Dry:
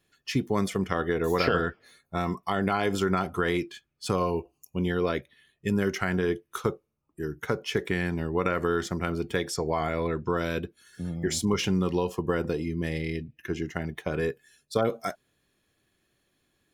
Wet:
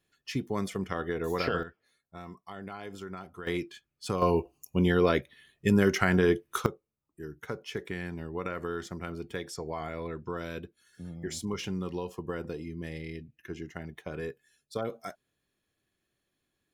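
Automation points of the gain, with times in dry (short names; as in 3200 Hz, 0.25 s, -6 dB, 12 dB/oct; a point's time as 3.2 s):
-5.5 dB
from 1.63 s -15.5 dB
from 3.47 s -4.5 dB
from 4.22 s +3 dB
from 6.66 s -8.5 dB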